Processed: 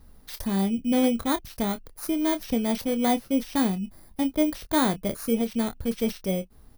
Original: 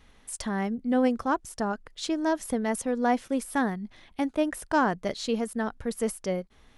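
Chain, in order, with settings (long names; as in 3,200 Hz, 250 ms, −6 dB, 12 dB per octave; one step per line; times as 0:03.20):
samples in bit-reversed order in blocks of 16 samples
low-shelf EQ 310 Hz +9.5 dB
double-tracking delay 26 ms −11 dB
level −2 dB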